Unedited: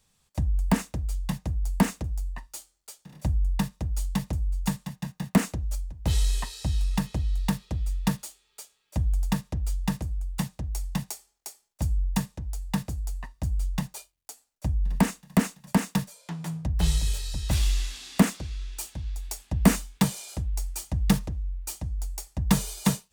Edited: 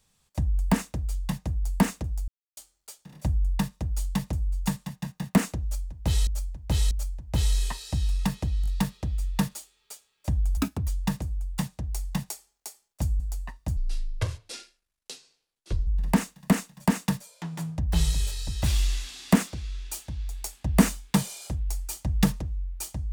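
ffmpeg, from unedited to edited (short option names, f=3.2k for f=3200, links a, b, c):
-filter_complex "[0:a]asplit=12[a][b][c][d][e][f][g][h][i][j][k][l];[a]atrim=end=2.28,asetpts=PTS-STARTPTS,afade=t=out:st=2.276:d=0.004:c=hsin[m];[b]atrim=start=2.28:end=2.57,asetpts=PTS-STARTPTS,volume=0[n];[c]atrim=start=2.57:end=6.272,asetpts=PTS-STARTPTS,afade=t=in:d=0.004:c=hsin[o];[d]atrim=start=5.628:end=6.272[p];[e]atrim=start=5.628:end=7.362[q];[f]atrim=start=7.338:end=7.362[r];[g]atrim=start=7.338:end=9.254[s];[h]atrim=start=9.25:end=9.68,asetpts=PTS-STARTPTS,asetrate=61740,aresample=44100[t];[i]atrim=start=9.676:end=12.002[u];[j]atrim=start=12.948:end=13.524[v];[k]atrim=start=13.52:end=14.74,asetpts=PTS-STARTPTS,asetrate=25578,aresample=44100,atrim=end_sample=92762,asetpts=PTS-STARTPTS[w];[l]atrim=start=14.736[x];[m][n][o]concat=n=3:v=0:a=1[y];[y][p]acrossfade=d=0.004:c1=hsin:c2=hsin[z];[z][q]acrossfade=d=0.004:c1=hsin:c2=hsin[aa];[aa][r]acrossfade=d=0.004:c1=hsin:c2=hsin[ab];[ab][s]acrossfade=d=0.004:c1=hsin:c2=hsin[ac];[ac][t]acrossfade=d=0.004:c1=hsin:c2=hsin[ad];[ad][u]acrossfade=d=0.004:c1=hsin:c2=hsin[ae];[ae][v]acrossfade=d=0.004:c1=hsin:c2=hsin[af];[af][w]acrossfade=d=0.004:c1=hsin:c2=hsin[ag];[ag][x]acrossfade=d=0.004:c1=hsin:c2=hsin"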